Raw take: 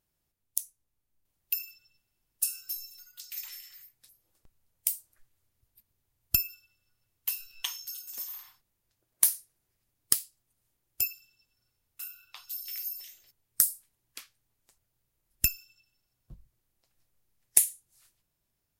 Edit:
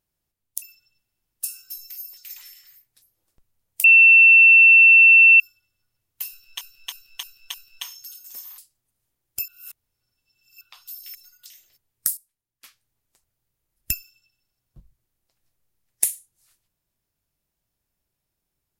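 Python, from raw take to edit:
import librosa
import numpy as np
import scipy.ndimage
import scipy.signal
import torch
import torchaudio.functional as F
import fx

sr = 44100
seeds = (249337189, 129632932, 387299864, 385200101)

y = fx.edit(x, sr, fx.cut(start_s=0.62, length_s=0.99),
    fx.swap(start_s=2.89, length_s=0.35, other_s=12.77, other_length_s=0.27),
    fx.bleep(start_s=4.91, length_s=1.56, hz=2690.0, db=-7.5),
    fx.repeat(start_s=7.37, length_s=0.31, count=5),
    fx.cut(start_s=8.41, length_s=1.79),
    fx.reverse_span(start_s=11.1, length_s=1.13),
    fx.clip_gain(start_s=13.71, length_s=0.47, db=-12.0), tone=tone)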